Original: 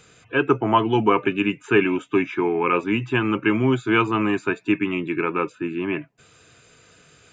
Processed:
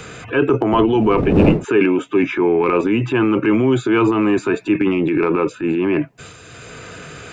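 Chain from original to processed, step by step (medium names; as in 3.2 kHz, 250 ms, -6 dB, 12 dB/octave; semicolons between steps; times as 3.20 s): 0.72–1.63 s: wind noise 200 Hz -16 dBFS; transient shaper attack -5 dB, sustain +9 dB; dynamic bell 400 Hz, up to +8 dB, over -32 dBFS, Q 0.73; three bands compressed up and down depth 70%; trim -1.5 dB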